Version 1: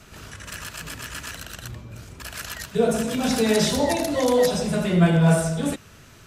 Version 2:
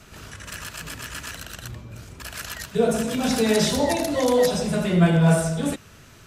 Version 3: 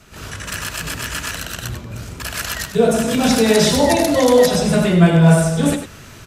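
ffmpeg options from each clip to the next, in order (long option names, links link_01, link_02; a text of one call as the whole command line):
ffmpeg -i in.wav -af anull out.wav
ffmpeg -i in.wav -af "aecho=1:1:98:0.316,dynaudnorm=framelen=110:gausssize=3:maxgain=9dB" out.wav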